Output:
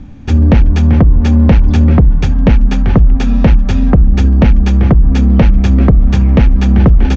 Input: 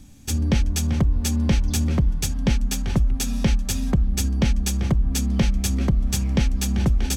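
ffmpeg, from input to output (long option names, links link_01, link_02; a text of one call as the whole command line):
ffmpeg -i in.wav -af "lowpass=1800,aresample=16000,aeval=exprs='0.398*sin(PI/2*1.78*val(0)/0.398)':channel_layout=same,aresample=44100,volume=6.5dB" out.wav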